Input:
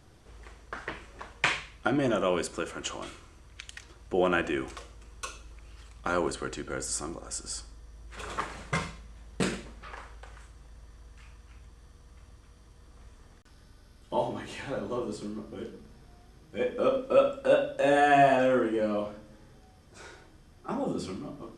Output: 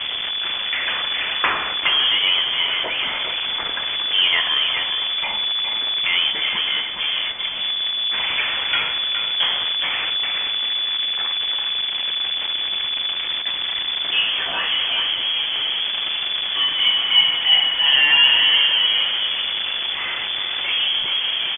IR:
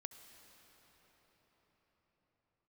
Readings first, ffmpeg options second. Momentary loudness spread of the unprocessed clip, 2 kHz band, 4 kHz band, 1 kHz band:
21 LU, +14.0 dB, +30.0 dB, +2.0 dB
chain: -af "aeval=exprs='val(0)+0.5*0.0708*sgn(val(0))':c=same,aecho=1:1:414:0.447,lowpass=f=3k:t=q:w=0.5098,lowpass=f=3k:t=q:w=0.6013,lowpass=f=3k:t=q:w=0.9,lowpass=f=3k:t=q:w=2.563,afreqshift=-3500,volume=4dB"

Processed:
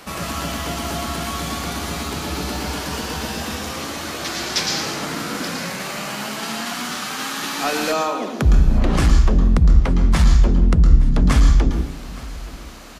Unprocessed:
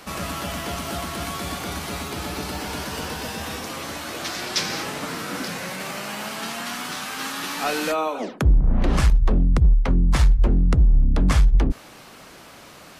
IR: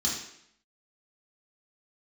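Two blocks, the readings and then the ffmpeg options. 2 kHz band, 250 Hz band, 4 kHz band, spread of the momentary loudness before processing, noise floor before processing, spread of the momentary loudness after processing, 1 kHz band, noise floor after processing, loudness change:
+3.0 dB, +4.5 dB, +4.0 dB, 11 LU, -45 dBFS, 11 LU, +3.5 dB, -32 dBFS, +3.5 dB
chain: -filter_complex "[0:a]aecho=1:1:868|1736:0.1|0.028,asplit=2[a][b];[1:a]atrim=start_sample=2205,adelay=110[c];[b][c]afir=irnorm=-1:irlink=0,volume=-13dB[d];[a][d]amix=inputs=2:normalize=0,volume=2dB"

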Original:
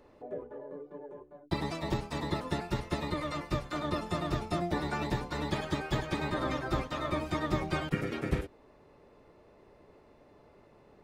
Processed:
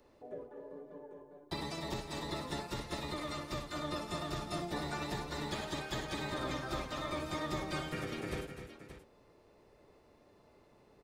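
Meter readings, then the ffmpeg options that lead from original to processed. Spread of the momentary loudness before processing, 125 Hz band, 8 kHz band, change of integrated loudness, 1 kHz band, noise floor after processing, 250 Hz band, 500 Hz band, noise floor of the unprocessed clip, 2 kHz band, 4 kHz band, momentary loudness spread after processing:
12 LU, -8.0 dB, +2.0 dB, -5.5 dB, -5.0 dB, -65 dBFS, -6.5 dB, -5.5 dB, -60 dBFS, -4.0 dB, -0.5 dB, 12 LU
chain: -filter_complex "[0:a]acrossover=split=330|800|3600[a][b][c][d];[a]asoftclip=type=tanh:threshold=-31.5dB[e];[d]acontrast=84[f];[e][b][c][f]amix=inputs=4:normalize=0,aecho=1:1:61|253|575:0.335|0.316|0.251,volume=-6dB"

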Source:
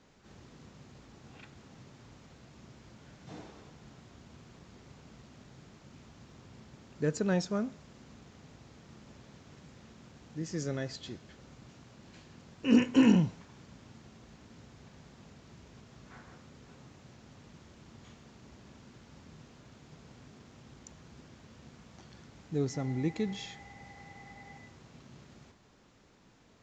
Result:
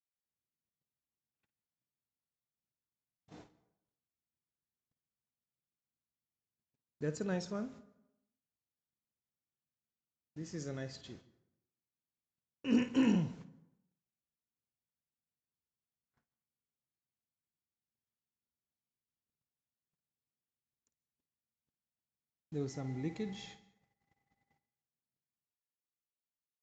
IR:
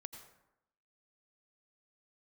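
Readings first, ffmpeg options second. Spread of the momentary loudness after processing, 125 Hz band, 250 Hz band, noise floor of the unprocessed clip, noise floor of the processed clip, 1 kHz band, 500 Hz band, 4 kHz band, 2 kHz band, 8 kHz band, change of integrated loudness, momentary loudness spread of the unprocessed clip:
21 LU, -7.0 dB, -6.5 dB, -61 dBFS, under -85 dBFS, -7.5 dB, -6.5 dB, -7.0 dB, -7.0 dB, n/a, -6.0 dB, 26 LU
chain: -filter_complex "[0:a]agate=range=-43dB:threshold=-46dB:ratio=16:detection=peak,asplit=2[a][b];[1:a]atrim=start_sample=2205,adelay=53[c];[b][c]afir=irnorm=-1:irlink=0,volume=-8dB[d];[a][d]amix=inputs=2:normalize=0,volume=-7dB"

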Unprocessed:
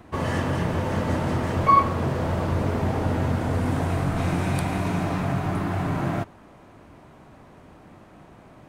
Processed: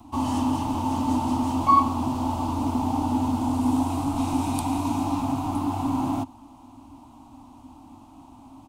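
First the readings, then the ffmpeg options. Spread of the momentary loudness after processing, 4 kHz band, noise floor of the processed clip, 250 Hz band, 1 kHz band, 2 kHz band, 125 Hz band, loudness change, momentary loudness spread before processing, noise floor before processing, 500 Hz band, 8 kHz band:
7 LU, -0.5 dB, -49 dBFS, +3.5 dB, +1.0 dB, -12.5 dB, -7.0 dB, -0.5 dB, 7 LU, -50 dBFS, -8.0 dB, +3.5 dB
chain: -filter_complex "[0:a]firequalizer=gain_entry='entry(100,0);entry(180,-14);entry(260,12);entry(430,-21);entry(860,8);entry(1700,-22);entry(2700,-2);entry(7100,4)':delay=0.05:min_phase=1,acrossover=split=200|4000[a][b][c];[a]asoftclip=type=tanh:threshold=-30.5dB[d];[d][b][c]amix=inputs=3:normalize=0"

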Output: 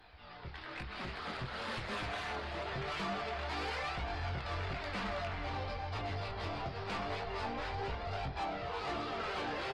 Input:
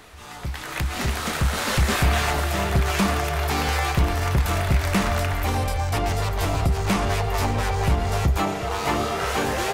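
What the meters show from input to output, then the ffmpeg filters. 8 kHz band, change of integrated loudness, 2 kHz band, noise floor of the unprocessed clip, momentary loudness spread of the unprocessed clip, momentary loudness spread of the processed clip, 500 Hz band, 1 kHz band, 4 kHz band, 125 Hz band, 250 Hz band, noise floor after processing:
-27.5 dB, -16.0 dB, -13.5 dB, -34 dBFS, 4 LU, 4 LU, -13.5 dB, -13.0 dB, -13.5 dB, -20.0 dB, -18.0 dB, -49 dBFS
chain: -filter_complex "[0:a]bandreject=f=50:t=h:w=6,bandreject=f=100:t=h:w=6,bandreject=f=150:t=h:w=6,bandreject=f=200:t=h:w=6,bandreject=f=250:t=h:w=6,bandreject=f=300:t=h:w=6,bandreject=f=350:t=h:w=6,bandreject=f=400:t=h:w=6,acrossover=split=330[a][b];[a]acompressor=threshold=-29dB:ratio=3[c];[c][b]amix=inputs=2:normalize=0,flanger=delay=1.2:depth=8.6:regen=45:speed=0.24:shape=sinusoidal,aresample=11025,aresample=44100,flanger=delay=19.5:depth=4.6:speed=1,asoftclip=type=tanh:threshold=-29dB,aecho=1:1:289|578|867|1156|1445:0.1|0.058|0.0336|0.0195|0.0113,volume=-3.5dB" -ar 48000 -c:a libopus -b:a 24k

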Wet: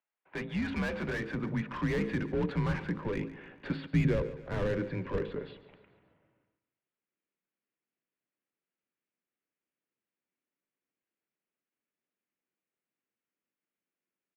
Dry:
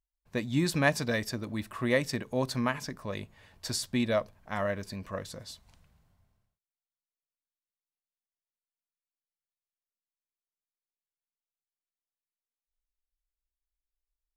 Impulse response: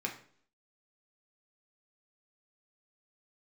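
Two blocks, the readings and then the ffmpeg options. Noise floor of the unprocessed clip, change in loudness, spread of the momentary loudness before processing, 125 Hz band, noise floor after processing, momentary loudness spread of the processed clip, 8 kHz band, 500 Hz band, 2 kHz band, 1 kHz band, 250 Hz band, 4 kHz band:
under -85 dBFS, -2.0 dB, 15 LU, +2.0 dB, under -85 dBFS, 10 LU, under -15 dB, -2.5 dB, -4.5 dB, -5.5 dB, -0.5 dB, -10.5 dB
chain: -filter_complex "[0:a]bandreject=f=60:t=h:w=6,bandreject=f=120:t=h:w=6,bandreject=f=180:t=h:w=6,bandreject=f=240:t=h:w=6,bandreject=f=300:t=h:w=6,bandreject=f=360:t=h:w=6,bandreject=f=420:t=h:w=6,bandreject=f=480:t=h:w=6,bandreject=f=540:t=h:w=6,bandreject=f=600:t=h:w=6,highpass=f=270:t=q:w=0.5412,highpass=f=270:t=q:w=1.307,lowpass=f=2.9k:t=q:w=0.5176,lowpass=f=2.9k:t=q:w=0.7071,lowpass=f=2.9k:t=q:w=1.932,afreqshift=-88,aresample=11025,asoftclip=type=tanh:threshold=-23dB,aresample=44100,asplit=2[a][b];[b]highpass=f=720:p=1,volume=24dB,asoftclip=type=tanh:threshold=-21dB[c];[a][c]amix=inputs=2:normalize=0,lowpass=f=2.2k:p=1,volume=-6dB,aecho=1:1:142|284|426|568:0.158|0.0761|0.0365|0.0175,asubboost=boost=11.5:cutoff=250,volume=-6.5dB"

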